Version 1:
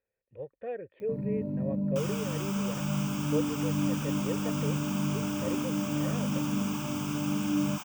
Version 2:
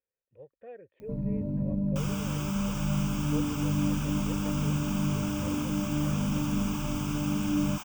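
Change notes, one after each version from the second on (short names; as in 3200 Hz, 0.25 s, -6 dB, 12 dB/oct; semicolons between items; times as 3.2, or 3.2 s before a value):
speech -9.0 dB; first sound: remove HPF 140 Hz 12 dB/oct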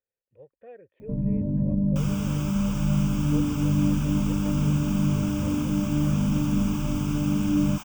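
first sound: add tilt shelf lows +6 dB, about 870 Hz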